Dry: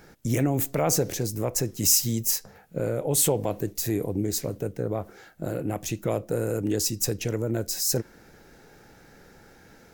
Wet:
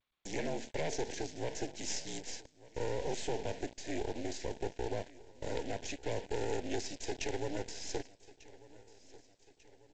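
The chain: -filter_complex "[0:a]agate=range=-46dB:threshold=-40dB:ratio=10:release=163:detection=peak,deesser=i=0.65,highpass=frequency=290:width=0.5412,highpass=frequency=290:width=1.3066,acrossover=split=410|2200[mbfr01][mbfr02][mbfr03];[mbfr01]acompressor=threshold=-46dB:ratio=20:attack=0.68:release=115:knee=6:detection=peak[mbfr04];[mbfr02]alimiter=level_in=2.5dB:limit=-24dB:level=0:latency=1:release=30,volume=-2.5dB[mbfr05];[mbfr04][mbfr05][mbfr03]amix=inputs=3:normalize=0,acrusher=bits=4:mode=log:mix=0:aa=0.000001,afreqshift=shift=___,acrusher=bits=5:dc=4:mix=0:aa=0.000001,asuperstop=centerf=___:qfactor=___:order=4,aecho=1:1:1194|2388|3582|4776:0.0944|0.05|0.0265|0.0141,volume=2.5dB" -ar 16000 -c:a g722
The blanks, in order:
-48, 1200, 1.8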